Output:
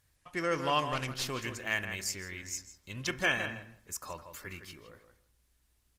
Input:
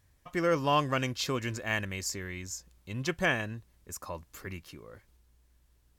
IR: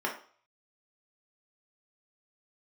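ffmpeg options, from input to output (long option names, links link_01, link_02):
-filter_complex "[0:a]tiltshelf=frequency=1100:gain=-4.5,asplit=3[link_01][link_02][link_03];[link_01]afade=type=out:start_time=0.88:duration=0.02[link_04];[link_02]aeval=exprs='clip(val(0),-1,0.0237)':channel_layout=same,afade=type=in:start_time=0.88:duration=0.02,afade=type=out:start_time=1.3:duration=0.02[link_05];[link_03]afade=type=in:start_time=1.3:duration=0.02[link_06];[link_04][link_05][link_06]amix=inputs=3:normalize=0,asplit=2[link_07][link_08];[link_08]adelay=162,lowpass=frequency=2800:poles=1,volume=-8.5dB,asplit=2[link_09][link_10];[link_10]adelay=162,lowpass=frequency=2800:poles=1,volume=0.17,asplit=2[link_11][link_12];[link_12]adelay=162,lowpass=frequency=2800:poles=1,volume=0.17[link_13];[link_07][link_09][link_11][link_13]amix=inputs=4:normalize=0,asplit=2[link_14][link_15];[1:a]atrim=start_sample=2205,adelay=27[link_16];[link_15][link_16]afir=irnorm=-1:irlink=0,volume=-22dB[link_17];[link_14][link_17]amix=inputs=2:normalize=0,aresample=32000,aresample=44100,volume=-2dB" -ar 48000 -c:a libopus -b:a 20k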